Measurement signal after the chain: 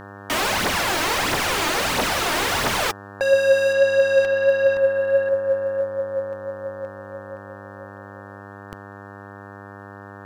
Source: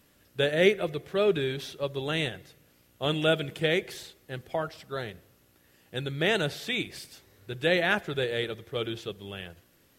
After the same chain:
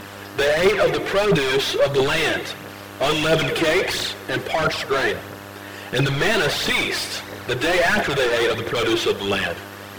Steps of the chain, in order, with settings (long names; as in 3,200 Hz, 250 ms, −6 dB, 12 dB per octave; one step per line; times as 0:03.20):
mid-hump overdrive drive 39 dB, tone 2,500 Hz, clips at −8.5 dBFS
phase shifter 1.5 Hz, delay 3.4 ms, feedback 52%
hum with harmonics 100 Hz, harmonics 18, −36 dBFS −2 dB per octave
level −3.5 dB